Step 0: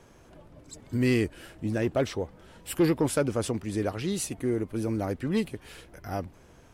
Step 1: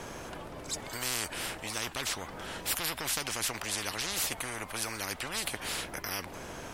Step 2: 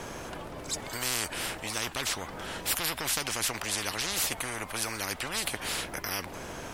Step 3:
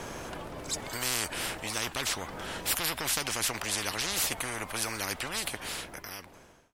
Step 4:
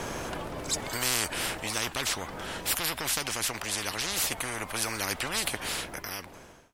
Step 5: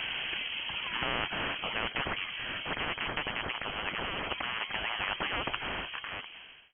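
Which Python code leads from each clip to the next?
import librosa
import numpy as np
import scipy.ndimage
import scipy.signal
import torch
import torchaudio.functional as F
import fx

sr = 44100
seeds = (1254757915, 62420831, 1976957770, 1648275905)

y1 = fx.spectral_comp(x, sr, ratio=10.0)
y2 = fx.dmg_crackle(y1, sr, seeds[0], per_s=80.0, level_db=-48.0)
y2 = F.gain(torch.from_numpy(y2), 2.5).numpy()
y3 = fx.fade_out_tail(y2, sr, length_s=1.61)
y4 = fx.rider(y3, sr, range_db=4, speed_s=2.0)
y4 = F.gain(torch.from_numpy(y4), 1.5).numpy()
y5 = fx.freq_invert(y4, sr, carrier_hz=3200)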